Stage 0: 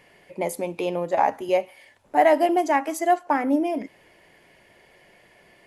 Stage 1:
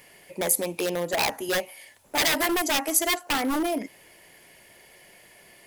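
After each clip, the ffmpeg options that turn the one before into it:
ffmpeg -i in.wav -af "aeval=exprs='0.1*(abs(mod(val(0)/0.1+3,4)-2)-1)':channel_layout=same,aemphasis=mode=production:type=75fm" out.wav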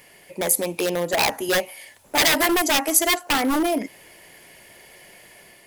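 ffmpeg -i in.wav -af "dynaudnorm=framelen=360:gausssize=3:maxgain=3dB,volume=2dB" out.wav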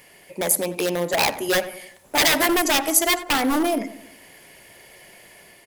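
ffmpeg -i in.wav -filter_complex "[0:a]asplit=2[link_01][link_02];[link_02]adelay=91,lowpass=frequency=1400:poles=1,volume=-12dB,asplit=2[link_03][link_04];[link_04]adelay=91,lowpass=frequency=1400:poles=1,volume=0.49,asplit=2[link_05][link_06];[link_06]adelay=91,lowpass=frequency=1400:poles=1,volume=0.49,asplit=2[link_07][link_08];[link_08]adelay=91,lowpass=frequency=1400:poles=1,volume=0.49,asplit=2[link_09][link_10];[link_10]adelay=91,lowpass=frequency=1400:poles=1,volume=0.49[link_11];[link_01][link_03][link_05][link_07][link_09][link_11]amix=inputs=6:normalize=0" out.wav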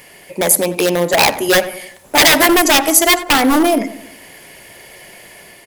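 ffmpeg -i in.wav -af "apsyclip=10dB,volume=-1.5dB" out.wav

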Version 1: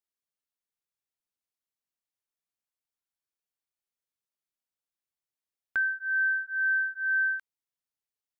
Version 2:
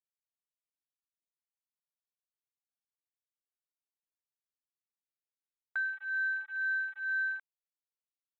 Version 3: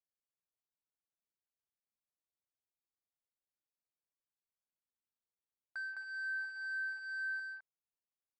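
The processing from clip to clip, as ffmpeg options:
ffmpeg -i in.wav -af "afwtdn=0.00891,volume=-6dB" out.wav
ffmpeg -i in.wav -af "asoftclip=type=tanh:threshold=-33dB,adynamicsmooth=sensitivity=3:basefreq=1400,aecho=1:1:209:0.708,volume=-2.5dB" out.wav

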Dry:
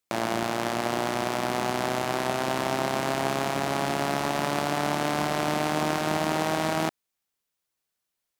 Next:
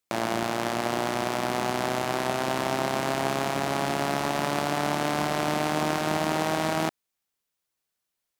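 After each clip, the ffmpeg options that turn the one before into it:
ffmpeg -i in.wav -af anull out.wav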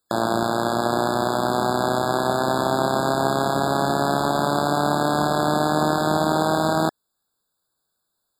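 ffmpeg -i in.wav -filter_complex "[0:a]asplit=2[link_01][link_02];[link_02]alimiter=limit=-19.5dB:level=0:latency=1,volume=-2dB[link_03];[link_01][link_03]amix=inputs=2:normalize=0,afftfilt=real='re*eq(mod(floor(b*sr/1024/1700),2),0)':imag='im*eq(mod(floor(b*sr/1024/1700),2),0)':win_size=1024:overlap=0.75,volume=3.5dB" out.wav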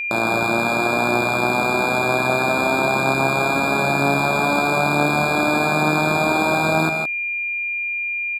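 ffmpeg -i in.wav -filter_complex "[0:a]aeval=exprs='val(0)+0.0708*sin(2*PI*2400*n/s)':channel_layout=same,asplit=2[link_01][link_02];[link_02]aecho=0:1:50|150|164:0.1|0.376|0.355[link_03];[link_01][link_03]amix=inputs=2:normalize=0" out.wav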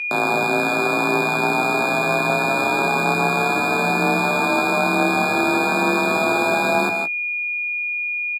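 ffmpeg -i in.wav -filter_complex "[0:a]afreqshift=36,asplit=2[link_01][link_02];[link_02]adelay=18,volume=-10dB[link_03];[link_01][link_03]amix=inputs=2:normalize=0,volume=-1dB" out.wav

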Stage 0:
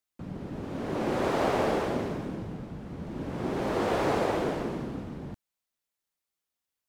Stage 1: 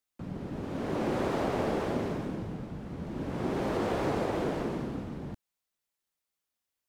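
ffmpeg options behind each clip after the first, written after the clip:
ffmpeg -i in.wav -filter_complex "[0:a]acrossover=split=340[link_01][link_02];[link_02]acompressor=threshold=-31dB:ratio=4[link_03];[link_01][link_03]amix=inputs=2:normalize=0" out.wav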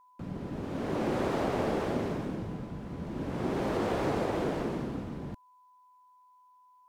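ffmpeg -i in.wav -af "aeval=exprs='val(0)+0.00126*sin(2*PI*1000*n/s)':channel_layout=same" out.wav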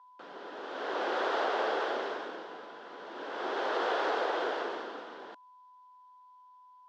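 ffmpeg -i in.wav -af "highpass=frequency=460:width=0.5412,highpass=frequency=460:width=1.3066,equalizer=frequency=580:width_type=q:width=4:gain=-4,equalizer=frequency=1500:width_type=q:width=4:gain=6,equalizer=frequency=2300:width_type=q:width=4:gain=-6,equalizer=frequency=3300:width_type=q:width=4:gain=5,lowpass=frequency=5300:width=0.5412,lowpass=frequency=5300:width=1.3066,volume=3.5dB" out.wav

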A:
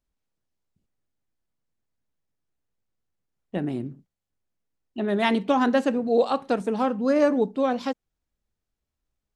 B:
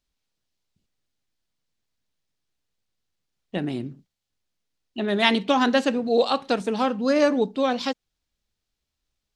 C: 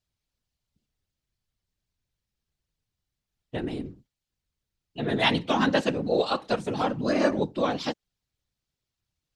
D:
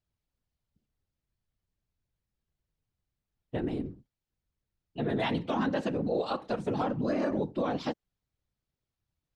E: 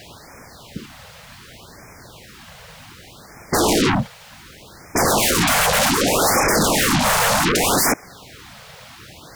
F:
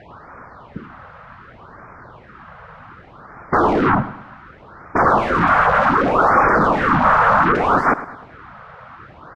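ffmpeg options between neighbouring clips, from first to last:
ffmpeg -i in.wav -af "equalizer=frequency=4100:width_type=o:width=1.9:gain=10.5" out.wav
ffmpeg -i in.wav -af "afftfilt=real='hypot(re,im)*cos(2*PI*random(0))':imag='hypot(re,im)*sin(2*PI*random(1))':win_size=512:overlap=0.75,volume=2.5dB" out.wav
ffmpeg -i in.wav -af "highshelf=frequency=2200:gain=-11,alimiter=limit=-21dB:level=0:latency=1:release=63" out.wav
ffmpeg -i in.wav -filter_complex "[0:a]asplit=2[link_01][link_02];[link_02]highpass=frequency=720:poles=1,volume=36dB,asoftclip=type=tanh:threshold=-20.5dB[link_03];[link_01][link_03]amix=inputs=2:normalize=0,lowpass=frequency=2700:poles=1,volume=-6dB,aeval=exprs='0.0944*sin(PI/2*5.62*val(0)/0.0944)':channel_layout=same,afftfilt=real='re*(1-between(b*sr/1024,280*pow(3600/280,0.5+0.5*sin(2*PI*0.66*pts/sr))/1.41,280*pow(3600/280,0.5+0.5*sin(2*PI*0.66*pts/sr))*1.41))':imag='im*(1-between(b*sr/1024,280*pow(3600/280,0.5+0.5*sin(2*PI*0.66*pts/sr))/1.41,280*pow(3600/280,0.5+0.5*sin(2*PI*0.66*pts/sr))*1.41))':win_size=1024:overlap=0.75,volume=7dB" out.wav
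ffmpeg -i in.wav -af "lowpass=frequency=1300:width_type=q:width=2.9,aecho=1:1:106|212|318|424:0.178|0.0765|0.0329|0.0141" out.wav

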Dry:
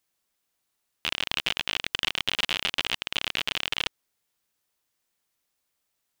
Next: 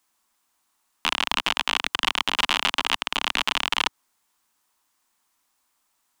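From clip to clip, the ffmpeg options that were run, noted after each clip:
ffmpeg -i in.wav -filter_complex "[0:a]equalizer=frequency=125:width_type=o:width=1:gain=-10,equalizer=frequency=250:width_type=o:width=1:gain=6,equalizer=frequency=500:width_type=o:width=1:gain=-6,equalizer=frequency=1000:width_type=o:width=1:gain=11,equalizer=frequency=8000:width_type=o:width=1:gain=4,acrossover=split=110|1200[link_01][link_02][link_03];[link_03]alimiter=limit=-12.5dB:level=0:latency=1:release=130[link_04];[link_01][link_02][link_04]amix=inputs=3:normalize=0,volume=4.5dB" out.wav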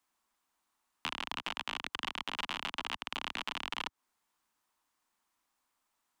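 ffmpeg -i in.wav -filter_complex "[0:a]highshelf=frequency=3500:gain=-7,acrossover=split=83|260[link_01][link_02][link_03];[link_01]acompressor=threshold=-54dB:ratio=4[link_04];[link_02]acompressor=threshold=-50dB:ratio=4[link_05];[link_03]acompressor=threshold=-28dB:ratio=4[link_06];[link_04][link_05][link_06]amix=inputs=3:normalize=0,volume=-5.5dB" out.wav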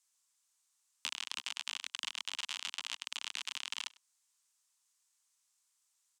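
ffmpeg -i in.wav -af "bandpass=frequency=7300:width_type=q:width=1.6:csg=0,aecho=1:1:99:0.0668,volume=10.5dB" out.wav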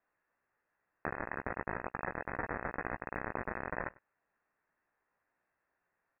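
ffmpeg -i in.wav -filter_complex "[0:a]asplit=2[link_01][link_02];[link_02]adelay=16,volume=-7.5dB[link_03];[link_01][link_03]amix=inputs=2:normalize=0,lowpass=frequency=2400:width_type=q:width=0.5098,lowpass=frequency=2400:width_type=q:width=0.6013,lowpass=frequency=2400:width_type=q:width=0.9,lowpass=frequency=2400:width_type=q:width=2.563,afreqshift=-2800,volume=10dB" out.wav

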